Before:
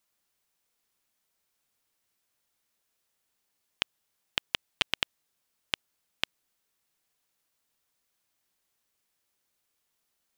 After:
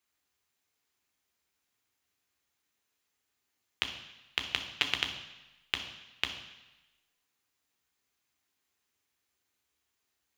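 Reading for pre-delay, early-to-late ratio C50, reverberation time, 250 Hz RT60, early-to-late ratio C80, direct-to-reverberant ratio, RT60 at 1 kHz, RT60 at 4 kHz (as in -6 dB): 3 ms, 8.5 dB, 1.0 s, 0.95 s, 10.5 dB, 4.0 dB, 1.1 s, 1.0 s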